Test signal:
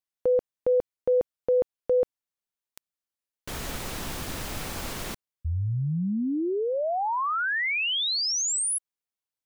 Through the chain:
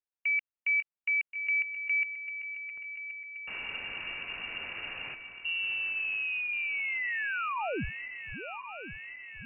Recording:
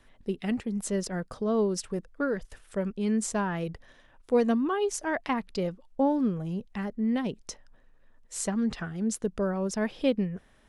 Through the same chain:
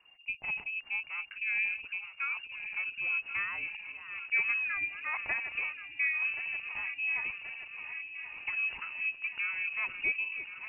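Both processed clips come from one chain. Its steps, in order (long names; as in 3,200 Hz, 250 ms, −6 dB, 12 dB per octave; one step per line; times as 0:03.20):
feedback delay that plays each chunk backwards 539 ms, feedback 80%, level −11 dB
voice inversion scrambler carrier 2,800 Hz
level −6.5 dB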